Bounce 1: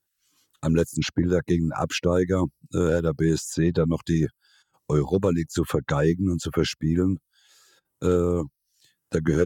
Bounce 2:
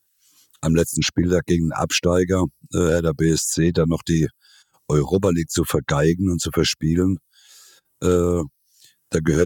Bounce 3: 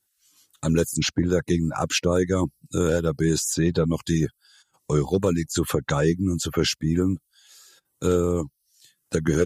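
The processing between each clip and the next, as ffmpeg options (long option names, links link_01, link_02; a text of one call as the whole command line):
ffmpeg -i in.wav -af "highshelf=frequency=3700:gain=9,volume=3.5dB" out.wav
ffmpeg -i in.wav -af "volume=-3dB" -ar 48000 -c:a libmp3lame -b:a 56k out.mp3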